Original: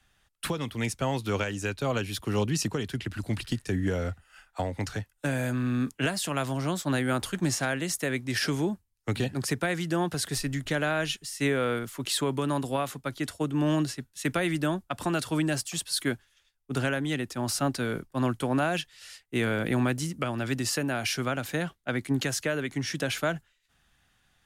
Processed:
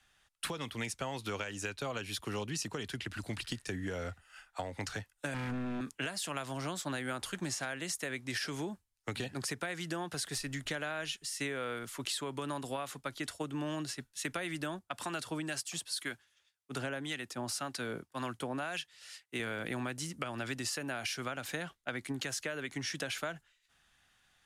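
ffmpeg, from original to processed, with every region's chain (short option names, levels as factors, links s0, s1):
-filter_complex "[0:a]asettb=1/sr,asplit=3[s0][s1][s2];[s0]atrim=end=5.344[s3];[s1]atrim=start=5.34:end=5.81,asetpts=PTS-STARTPTS,afade=t=in:d=0.004:c=qsin,afade=t=out:st=0.466:d=0.004:c=qsin,acrossover=split=3300[s4][s5];[s5]acompressor=threshold=0.001:ratio=4:attack=1:release=60[s6];[s4][s6]amix=inputs=2:normalize=0,aeval=exprs='0.0422*(abs(mod(val(0)/0.0422+3,4)-2)-1)':c=same,lowshelf=f=380:t=q:w=1.5:g=8.5[s7];[s2]atrim=start=5.806[s8];[s3][s7]acrossfade=d=0.004:c1=hsin:c2=qsin[s9];[s9][s8]acrossfade=d=0.004:c1=qsin:c2=hsin,asettb=1/sr,asplit=3[s10][s11][s12];[s10]atrim=end=14.794[s13];[s11]atrim=start=14.79:end=19.4,asetpts=PTS-STARTPTS,afade=t=in:d=0.004:c=qsin,afade=t=out:st=4.606:d=0.004:c=qsin,highpass=81,acrossover=split=940[s14][s15];[s14]aeval=exprs='val(0)*(1-0.5/2+0.5/2*cos(2*PI*1.9*n/s))':c=same[s16];[s15]aeval=exprs='val(0)*(1-0.5/2-0.5/2*cos(2*PI*1.9*n/s))':c=same[s17];[s16][s17]amix=inputs=2:normalize=0[s18];[s12]atrim=start=19.396[s19];[s13][s18]acrossfade=d=0.004:c1=hsin:c2=qsin[s20];[s20][s19]acrossfade=d=0.004:c1=qsin:c2=hsin,lowpass=12000,lowshelf=f=460:g=-8.5,acompressor=threshold=0.02:ratio=6"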